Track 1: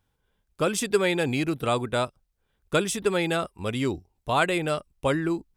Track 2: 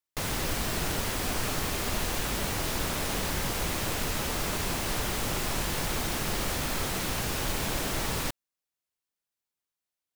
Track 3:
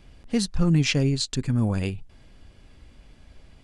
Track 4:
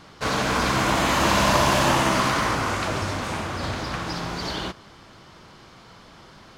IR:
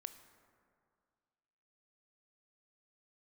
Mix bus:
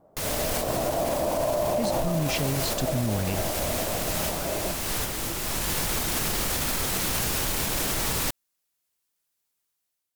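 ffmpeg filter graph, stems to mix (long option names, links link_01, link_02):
-filter_complex "[0:a]acompressor=threshold=-36dB:ratio=2,flanger=delay=15.5:depth=6.9:speed=0.98,volume=-15.5dB,asplit=2[link_01][link_02];[1:a]equalizer=frequency=16000:width_type=o:width=1.6:gain=7,volume=-2dB[link_03];[2:a]adelay=1450,volume=-7dB[link_04];[3:a]lowpass=frequency=630:width_type=q:width=4.9,bandreject=frequency=50:width_type=h:width=6,bandreject=frequency=100:width_type=h:width=6,bandreject=frequency=150:width_type=h:width=6,bandreject=frequency=200:width_type=h:width=6,volume=-13.5dB[link_05];[link_02]apad=whole_len=447762[link_06];[link_03][link_06]sidechaincompress=threshold=-57dB:ratio=4:attack=29:release=847[link_07];[link_01][link_07][link_04][link_05]amix=inputs=4:normalize=0,dynaudnorm=framelen=210:gausssize=5:maxgain=8dB,alimiter=limit=-17dB:level=0:latency=1:release=66"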